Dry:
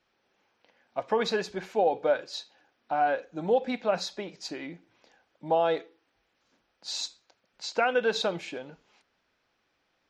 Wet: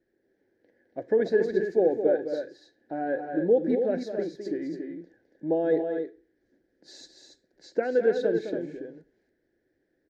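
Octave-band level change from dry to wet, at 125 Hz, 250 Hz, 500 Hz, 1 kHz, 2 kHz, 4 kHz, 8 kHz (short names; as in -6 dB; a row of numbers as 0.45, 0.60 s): +2.0 dB, +7.5 dB, +3.5 dB, -9.5 dB, -4.5 dB, under -10 dB, under -10 dB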